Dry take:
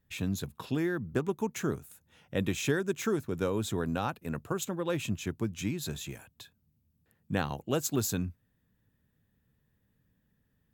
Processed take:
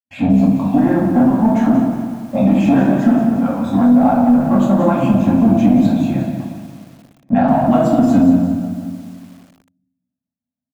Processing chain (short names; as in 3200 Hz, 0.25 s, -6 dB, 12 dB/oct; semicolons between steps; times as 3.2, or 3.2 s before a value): random spectral dropouts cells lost 25%; expander -59 dBFS; in parallel at 0 dB: vocal rider 2 s; on the sum: sample leveller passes 3; 3.08–3.73 level quantiser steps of 12 dB; double band-pass 410 Hz, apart 1.4 oct; feedback echo 0.217 s, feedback 52%, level -15.5 dB; shoebox room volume 190 m³, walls mixed, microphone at 2.2 m; added harmonics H 3 -40 dB, 4 -26 dB, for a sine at -2 dBFS; maximiser +13 dB; lo-fi delay 0.178 s, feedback 55%, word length 6-bit, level -9.5 dB; gain -3.5 dB